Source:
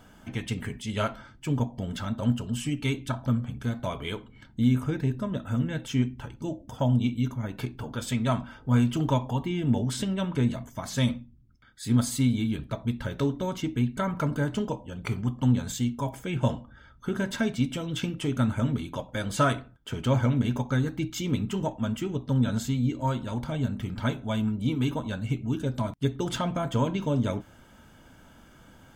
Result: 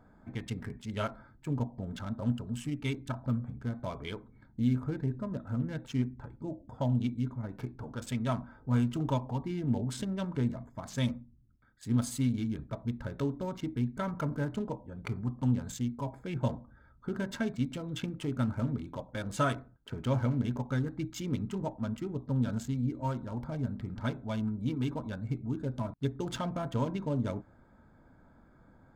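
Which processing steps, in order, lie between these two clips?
adaptive Wiener filter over 15 samples
level −5.5 dB

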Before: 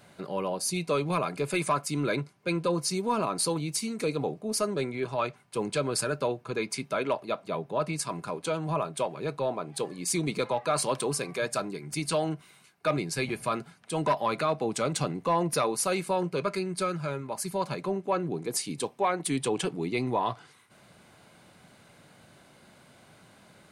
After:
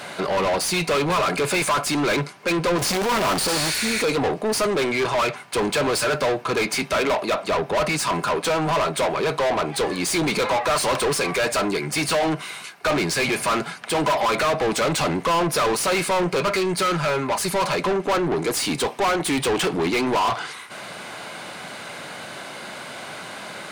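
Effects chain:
0:02.78–0:03.70: sign of each sample alone
0:03.51–0:03.98: healed spectral selection 1,400–11,000 Hz both
mid-hump overdrive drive 31 dB, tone 5,000 Hz, clips at −14 dBFS

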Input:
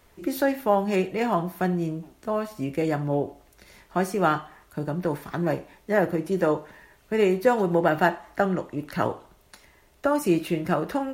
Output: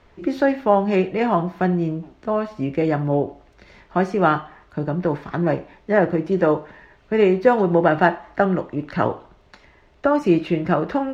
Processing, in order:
high-frequency loss of the air 180 metres
level +5.5 dB

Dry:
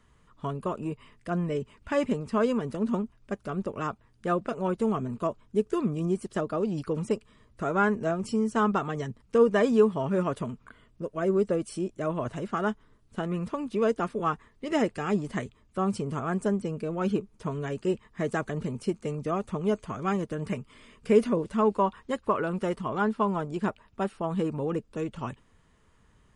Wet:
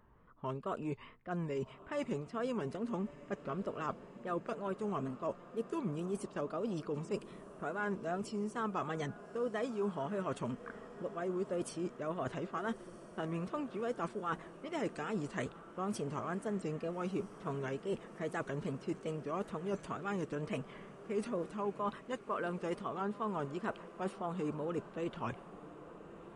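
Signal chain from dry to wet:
low-pass that shuts in the quiet parts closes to 1,100 Hz, open at −25 dBFS
low-shelf EQ 230 Hz −7.5 dB
reversed playback
downward compressor 5 to 1, threshold −38 dBFS, peak gain reduction 18.5 dB
reversed playback
tape wow and flutter 110 cents
feedback delay with all-pass diffusion 1,276 ms, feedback 66%, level −15.5 dB
level +2.5 dB

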